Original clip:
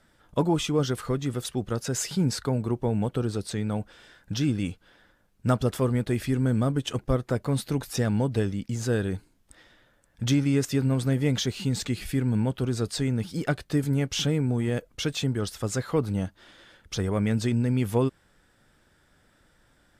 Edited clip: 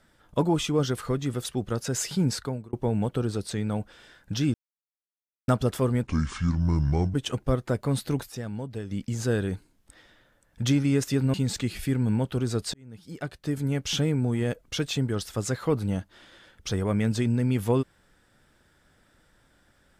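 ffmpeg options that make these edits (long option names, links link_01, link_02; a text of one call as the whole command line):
ffmpeg -i in.wav -filter_complex "[0:a]asplit=10[link_01][link_02][link_03][link_04][link_05][link_06][link_07][link_08][link_09][link_10];[link_01]atrim=end=2.73,asetpts=PTS-STARTPTS,afade=type=out:start_time=2.34:duration=0.39[link_11];[link_02]atrim=start=2.73:end=4.54,asetpts=PTS-STARTPTS,afade=type=in:duration=0.004:curve=hsin,afade=type=out:start_time=1.806:duration=0.004:curve=hsin[link_12];[link_03]atrim=start=4.54:end=5.48,asetpts=PTS-STARTPTS,volume=0[link_13];[link_04]atrim=start=5.48:end=6.034,asetpts=PTS-STARTPTS,afade=type=in:duration=0.004:curve=hsin[link_14];[link_05]atrim=start=6.03:end=6.75,asetpts=PTS-STARTPTS,asetrate=28665,aresample=44100,atrim=end_sample=48849,asetpts=PTS-STARTPTS[link_15];[link_06]atrim=start=6.746:end=7.99,asetpts=PTS-STARTPTS,afade=type=out:start_time=1.124:duration=0.12:curve=exp:silence=0.334965[link_16];[link_07]atrim=start=7.99:end=8.41,asetpts=PTS-STARTPTS,volume=-9.5dB[link_17];[link_08]atrim=start=8.41:end=10.952,asetpts=PTS-STARTPTS,afade=type=in:duration=0.12:curve=exp:silence=0.334965[link_18];[link_09]atrim=start=11.598:end=13,asetpts=PTS-STARTPTS,afade=type=out:start_time=1.398:duration=0.004:curve=hsin[link_19];[link_10]atrim=start=13,asetpts=PTS-STARTPTS,afade=type=in:duration=1.22[link_20];[link_11][link_12][link_13][link_14]concat=n=4:v=0:a=1[link_21];[link_21][link_15]acrossfade=duration=0.004:curve1=hsin:curve2=hsin[link_22];[link_16][link_17][link_18]concat=n=3:v=0:a=1[link_23];[link_22][link_23]acrossfade=duration=0.004:curve1=hsin:curve2=hsin[link_24];[link_19][link_20]concat=n=2:v=0:a=1[link_25];[link_24][link_25]acrossfade=duration=0.004:curve1=hsin:curve2=hsin" out.wav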